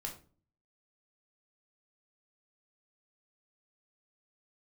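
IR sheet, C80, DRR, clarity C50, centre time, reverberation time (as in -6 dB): 15.0 dB, 1.0 dB, 9.5 dB, 18 ms, 0.40 s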